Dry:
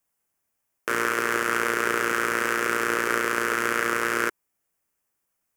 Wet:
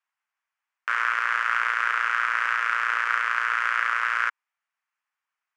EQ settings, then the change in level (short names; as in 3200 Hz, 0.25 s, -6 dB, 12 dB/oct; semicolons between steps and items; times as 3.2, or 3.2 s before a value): HPF 970 Hz 24 dB/oct; LPF 2800 Hz 12 dB/oct; +2.5 dB